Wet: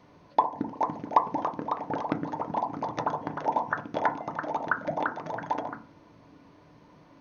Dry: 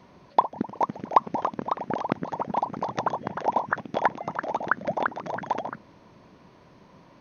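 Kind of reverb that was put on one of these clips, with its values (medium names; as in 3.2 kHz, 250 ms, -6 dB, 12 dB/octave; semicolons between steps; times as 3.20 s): FDN reverb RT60 0.37 s, low-frequency decay 1.35×, high-frequency decay 0.3×, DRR 5.5 dB; trim -4 dB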